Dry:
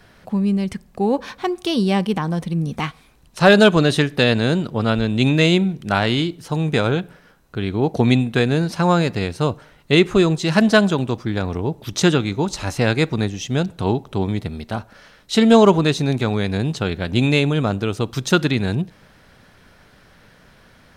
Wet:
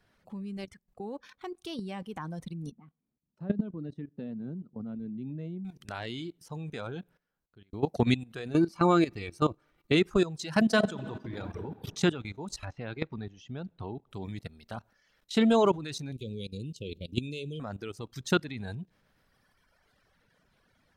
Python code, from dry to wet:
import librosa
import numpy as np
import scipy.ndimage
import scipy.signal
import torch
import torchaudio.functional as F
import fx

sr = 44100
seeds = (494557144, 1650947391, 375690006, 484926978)

y = fx.level_steps(x, sr, step_db=11, at=(0.64, 1.62))
y = fx.bandpass_q(y, sr, hz=210.0, q=2.1, at=(2.71, 5.65))
y = fx.small_body(y, sr, hz=(330.0, 1200.0, 2300.0), ring_ms=70, db=13, at=(8.52, 9.95), fade=0.02)
y = fx.reverb_throw(y, sr, start_s=10.63, length_s=1.19, rt60_s=2.0, drr_db=3.5)
y = fx.air_absorb(y, sr, metres=180.0, at=(12.65, 14.11))
y = fx.ellip_bandstop(y, sr, low_hz=500.0, high_hz=2700.0, order=3, stop_db=40, at=(16.12, 17.6))
y = fx.edit(y, sr, fx.fade_out_span(start_s=6.95, length_s=0.78), tone=tone)
y = fx.dereverb_blind(y, sr, rt60_s=1.9)
y = fx.level_steps(y, sr, step_db=16)
y = F.gain(torch.from_numpy(y), -5.5).numpy()